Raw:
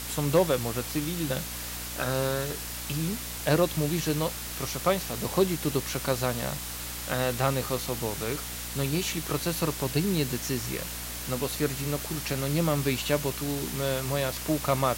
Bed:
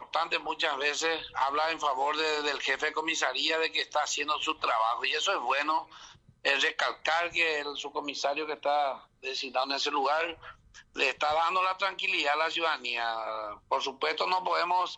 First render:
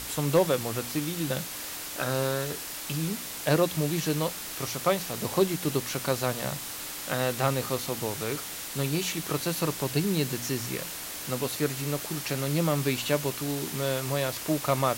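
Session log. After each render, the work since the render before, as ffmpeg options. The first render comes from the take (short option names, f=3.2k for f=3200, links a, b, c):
-af "bandreject=f=60:t=h:w=4,bandreject=f=120:t=h:w=4,bandreject=f=180:t=h:w=4,bandreject=f=240:t=h:w=4"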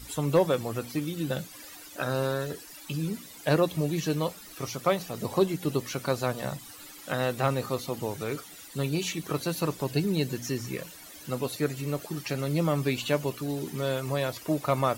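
-af "afftdn=nr=15:nf=-38"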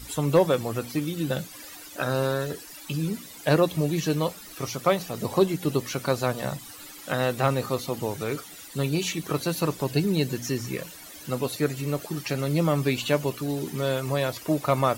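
-af "volume=3dB"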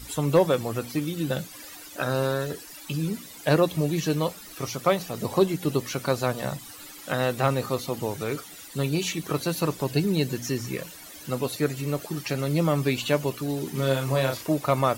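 -filter_complex "[0:a]asettb=1/sr,asplit=3[a][b][c];[a]atrim=end=13.714[d];[b]atrim=start=13.71:end=14.47,asetpts=PTS-STARTPTS,afade=t=in:d=0.004:c=qsin,afade=t=out:st=0.756:d=0.004:c=qsin,asplit=2[e][f];[f]adelay=37,volume=-4dB[g];[e][g]amix=inputs=2:normalize=0,atrim=end_sample=33516[h];[c]atrim=start=14.466[i];[d][h]acrossfade=d=0.004:c1=hsin:c2=qsin[j];[j][i]acrossfade=d=0.004:c1=qsin:c2=hsin"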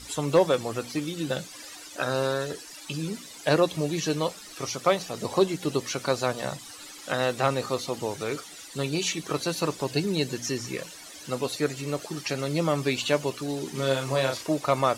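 -af "lowpass=7.5k,bass=f=250:g=-6,treble=f=4k:g=5"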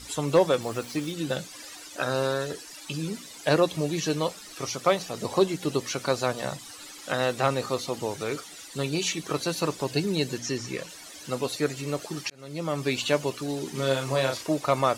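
-filter_complex "[0:a]asettb=1/sr,asplit=3[a][b][c];[a]atrim=end=0.624[d];[b]atrim=start=0.62:end=1.12,asetpts=PTS-STARTPTS,afade=t=in:d=0.004:c=qsin,afade=t=out:st=0.496:d=0.004:c=qsin,aeval=exprs='val(0)*gte(abs(val(0)),0.00794)':c=same[e];[c]atrim=start=1.116[f];[d][e]acrossfade=d=0.004:c1=hsin:c2=qsin[g];[g][f]acrossfade=d=0.004:c1=qsin:c2=hsin,asettb=1/sr,asplit=3[h][i][j];[h]atrim=end=10.384[k];[i]atrim=start=10.38:end=10.89,asetpts=PTS-STARTPTS,afade=t=in:d=0.004:c=qsin,afade=t=out:st=0.506:d=0.004:c=qsin,acrossover=split=8000[l][m];[m]acompressor=threshold=-54dB:ratio=4:attack=1:release=60[n];[l][n]amix=inputs=2:normalize=0[o];[j]atrim=start=10.886[p];[k][o]acrossfade=d=0.004:c1=hsin:c2=qsin[q];[q][p]acrossfade=d=0.004:c1=qsin:c2=hsin,asplit=2[r][s];[r]atrim=end=12.3,asetpts=PTS-STARTPTS,afade=t=out:st=12.296:d=0.004:c=hsin[t];[s]atrim=start=12.3,asetpts=PTS-STARTPTS,afade=t=in:d=0.65[u];[t][u]concat=n=2:v=0:a=1"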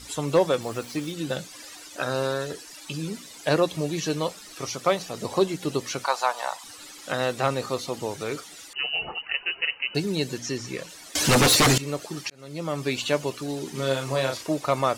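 -filter_complex "[0:a]asettb=1/sr,asplit=3[a][b][c];[a]atrim=end=6.044[d];[b]atrim=start=6.04:end=6.64,asetpts=PTS-STARTPTS,afade=t=in:d=0.004:c=qsin,afade=t=out:st=0.596:d=0.004:c=qsin,highpass=f=880:t=q:w=3.7[e];[c]atrim=start=6.636[f];[d][e]acrossfade=d=0.004:c1=hsin:c2=qsin[g];[g][f]acrossfade=d=0.004:c1=qsin:c2=hsin,asettb=1/sr,asplit=3[h][i][j];[h]atrim=end=8.734[k];[i]atrim=start=8.73:end=9.95,asetpts=PTS-STARTPTS,afade=t=in:d=0.004:c=qsin,afade=t=out:st=1.216:d=0.004:c=qsin,lowpass=f=2.6k:t=q:w=0.5098,lowpass=f=2.6k:t=q:w=0.6013,lowpass=f=2.6k:t=q:w=0.9,lowpass=f=2.6k:t=q:w=2.563,afreqshift=-3100[l];[j]atrim=start=9.946[m];[k][l]acrossfade=d=0.004:c1=hsin:c2=qsin[n];[n][m]acrossfade=d=0.004:c1=qsin:c2=hsin,asettb=1/sr,asplit=3[o][p][q];[o]atrim=end=11.154[r];[p]atrim=start=11.15:end=11.78,asetpts=PTS-STARTPTS,afade=t=in:d=0.004:c=qsin,afade=t=out:st=0.626:d=0.004:c=qsin,aeval=exprs='0.211*sin(PI/2*6.31*val(0)/0.211)':c=same[s];[q]atrim=start=11.776[t];[r][s]acrossfade=d=0.004:c1=hsin:c2=qsin[u];[u][t]acrossfade=d=0.004:c1=qsin:c2=hsin"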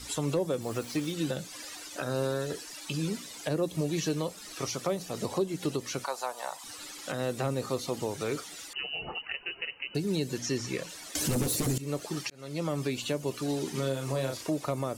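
-filter_complex "[0:a]acrossover=split=470|7500[a][b][c];[b]acompressor=threshold=-34dB:ratio=6[d];[a][d][c]amix=inputs=3:normalize=0,alimiter=limit=-19.5dB:level=0:latency=1:release=247"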